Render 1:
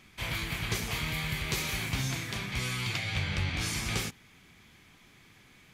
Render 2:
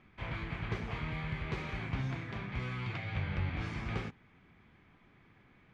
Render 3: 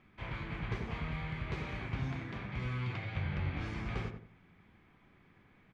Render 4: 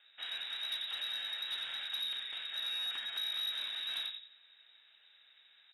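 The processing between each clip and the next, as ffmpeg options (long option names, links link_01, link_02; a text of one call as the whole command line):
ffmpeg -i in.wav -af "lowpass=1700,volume=-2.5dB" out.wav
ffmpeg -i in.wav -filter_complex "[0:a]asplit=2[link_01][link_02];[link_02]adelay=88,lowpass=frequency=1100:poles=1,volume=-4dB,asplit=2[link_03][link_04];[link_04]adelay=88,lowpass=frequency=1100:poles=1,volume=0.35,asplit=2[link_05][link_06];[link_06]adelay=88,lowpass=frequency=1100:poles=1,volume=0.35,asplit=2[link_07][link_08];[link_08]adelay=88,lowpass=frequency=1100:poles=1,volume=0.35[link_09];[link_01][link_03][link_05][link_07][link_09]amix=inputs=5:normalize=0,volume=-2dB" out.wav
ffmpeg -i in.wav -af "lowpass=frequency=3300:width_type=q:width=0.5098,lowpass=frequency=3300:width_type=q:width=0.6013,lowpass=frequency=3300:width_type=q:width=0.9,lowpass=frequency=3300:width_type=q:width=2.563,afreqshift=-3900,asoftclip=type=tanh:threshold=-31dB" out.wav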